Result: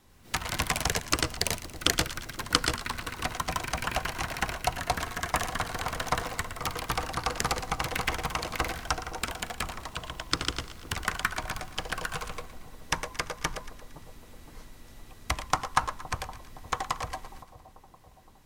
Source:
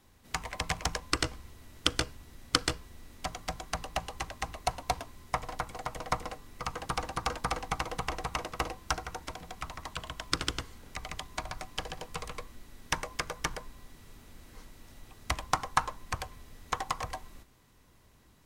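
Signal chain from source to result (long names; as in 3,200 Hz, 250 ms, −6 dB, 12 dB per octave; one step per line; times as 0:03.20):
pitch vibrato 14 Hz 28 cents
delay with pitch and tempo change per echo 96 ms, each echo +6 semitones, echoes 2
echo with a time of its own for lows and highs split 900 Hz, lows 516 ms, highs 115 ms, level −14 dB
level +2 dB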